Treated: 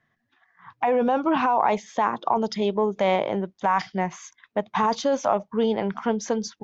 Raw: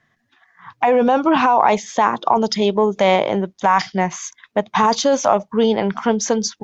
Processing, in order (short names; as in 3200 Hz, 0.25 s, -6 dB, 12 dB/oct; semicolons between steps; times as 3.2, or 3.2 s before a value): high shelf 5100 Hz -10.5 dB; gain -6.5 dB